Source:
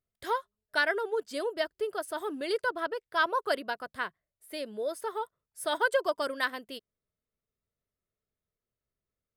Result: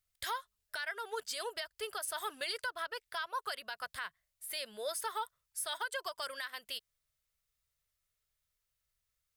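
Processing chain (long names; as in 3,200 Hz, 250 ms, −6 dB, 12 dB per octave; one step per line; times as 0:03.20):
guitar amp tone stack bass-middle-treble 10-0-10
downward compressor 10 to 1, threshold −42 dBFS, peak gain reduction 15 dB
brickwall limiter −38 dBFS, peak gain reduction 10 dB
level +10.5 dB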